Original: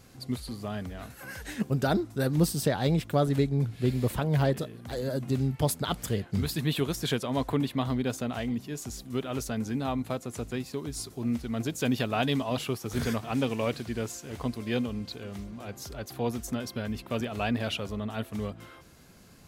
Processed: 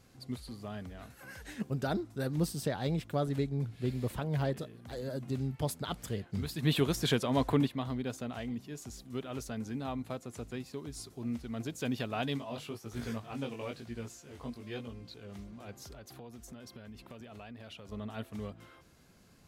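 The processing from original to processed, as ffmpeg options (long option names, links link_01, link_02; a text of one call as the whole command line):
ffmpeg -i in.wav -filter_complex "[0:a]asplit=3[link_01][link_02][link_03];[link_01]afade=type=out:start_time=6.62:duration=0.02[link_04];[link_02]acontrast=81,afade=type=in:start_time=6.62:duration=0.02,afade=type=out:start_time=7.66:duration=0.02[link_05];[link_03]afade=type=in:start_time=7.66:duration=0.02[link_06];[link_04][link_05][link_06]amix=inputs=3:normalize=0,asplit=3[link_07][link_08][link_09];[link_07]afade=type=out:start_time=12.37:duration=0.02[link_10];[link_08]flanger=delay=17:depth=4.2:speed=1,afade=type=in:start_time=12.37:duration=0.02,afade=type=out:start_time=15.28:duration=0.02[link_11];[link_09]afade=type=in:start_time=15.28:duration=0.02[link_12];[link_10][link_11][link_12]amix=inputs=3:normalize=0,asettb=1/sr,asplit=3[link_13][link_14][link_15];[link_13]atrim=end=15.924[link_16];[link_14]atrim=start=15.92:end=17.92,asetpts=PTS-STARTPTS,afade=type=in:duration=0.004:curve=qsin,afade=type=out:start_time=1.996:duration=0.004:curve=qsin,acompressor=threshold=-38dB:ratio=5:attack=3.2:release=140:knee=1:detection=peak[link_17];[link_15]atrim=start=17.916[link_18];[link_16][link_17]acrossfade=duration=0.004:curve1=hsin:curve2=qsin[link_19];[link_19][link_18]acrossfade=duration=0.004:curve1=qsin:curve2=hsin,highshelf=frequency=11000:gain=-5,volume=-7dB" out.wav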